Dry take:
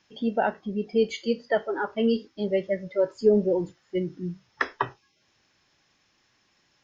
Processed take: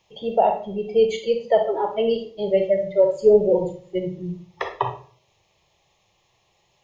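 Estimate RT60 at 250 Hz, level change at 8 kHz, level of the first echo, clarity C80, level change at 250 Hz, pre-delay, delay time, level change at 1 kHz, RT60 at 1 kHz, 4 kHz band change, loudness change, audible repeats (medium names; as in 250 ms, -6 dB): 0.55 s, no reading, no echo, 13.5 dB, -2.0 dB, 35 ms, no echo, +7.0 dB, 0.45 s, +3.0 dB, +5.5 dB, no echo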